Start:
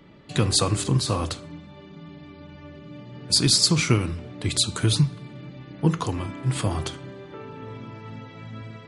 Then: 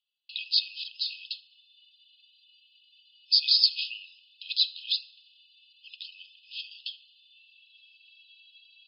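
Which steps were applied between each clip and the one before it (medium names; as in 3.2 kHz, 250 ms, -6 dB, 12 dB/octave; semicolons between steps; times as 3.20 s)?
FFT band-pass 2.5–5.2 kHz; gate with hold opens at -54 dBFS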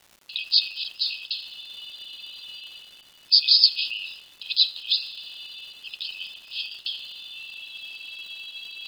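reverse; upward compressor, threshold -31 dBFS; reverse; crackle 410 per s -46 dBFS; trim +5 dB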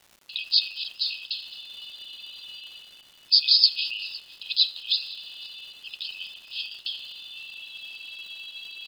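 delay 510 ms -21 dB; trim -1.5 dB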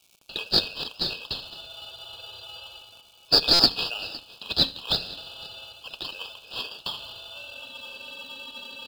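brick-wall FIR high-pass 2.2 kHz; in parallel at -8 dB: sample-and-hold 21×; on the sum: buffer glitch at 3.53 s, samples 256, times 10; trim -1 dB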